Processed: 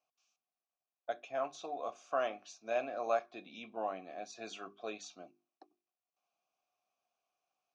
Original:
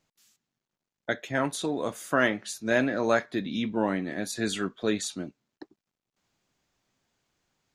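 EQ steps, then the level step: vowel filter a; resonant low-pass 6 kHz, resonance Q 5.4; hum notches 50/100/150/200/250/300/350/400 Hz; +1.0 dB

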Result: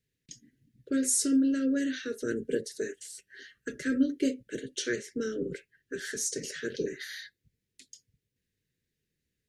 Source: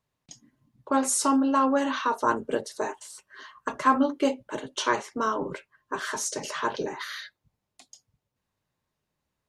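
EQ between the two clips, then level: elliptic band-stop 470–1700 Hz, stop band 50 dB; dynamic bell 2.7 kHz, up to -7 dB, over -51 dBFS, Q 1.4; 0.0 dB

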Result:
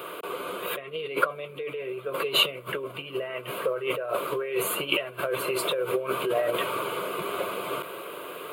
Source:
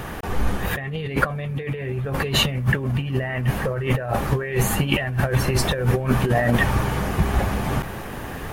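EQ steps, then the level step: high-pass 240 Hz 24 dB/octave; static phaser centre 1.2 kHz, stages 8; 0.0 dB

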